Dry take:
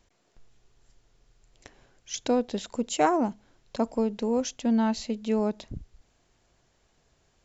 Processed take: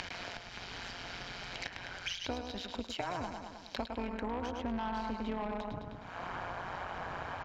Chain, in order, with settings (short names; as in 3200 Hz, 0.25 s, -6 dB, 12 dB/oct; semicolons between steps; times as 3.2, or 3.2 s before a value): median filter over 5 samples; in parallel at -2.5 dB: upward compressor, threshold -30 dBFS; on the sum: bell 280 Hz +4 dB 0.27 oct; comb 1.3 ms, depth 31%; feedback echo 0.104 s, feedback 46%, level -8 dB; band-pass sweep 4900 Hz -> 1100 Hz, 3.76–4.33; AM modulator 180 Hz, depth 65%; limiter -32.5 dBFS, peak gain reduction 12 dB; tone controls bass +10 dB, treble -8 dB; soft clip -36.5 dBFS, distortion -13 dB; three-band squash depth 100%; gain +9.5 dB